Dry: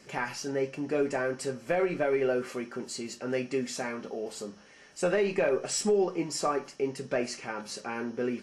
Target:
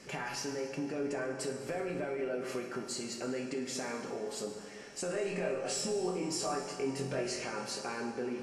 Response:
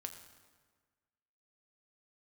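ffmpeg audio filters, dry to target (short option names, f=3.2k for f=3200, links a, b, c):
-filter_complex "[0:a]alimiter=level_in=1dB:limit=-24dB:level=0:latency=1:release=36,volume=-1dB,acompressor=threshold=-39dB:ratio=3,asettb=1/sr,asplit=3[a][b][c];[a]atrim=end=5.124[d];[b]atrim=start=5.12:end=7.45,asetpts=PTS-STARTPTS,afade=t=in:d=0.004:c=qsin,afade=t=out:st=2.326:d=0.004:c=qsin,asplit=2[e][f];[f]adelay=22,volume=-2dB[g];[e][g]amix=inputs=2:normalize=0,atrim=end_sample=102753[h];[c]atrim=start=7.446[i];[d][h]acrossfade=d=0.004:c1=hsin:c2=qsin[j];[j][i]acrossfade=d=0.004:c1=qsin:c2=hsin[k];[1:a]atrim=start_sample=2205,asetrate=26460,aresample=44100[l];[k][l]afir=irnorm=-1:irlink=0,volume=3.5dB"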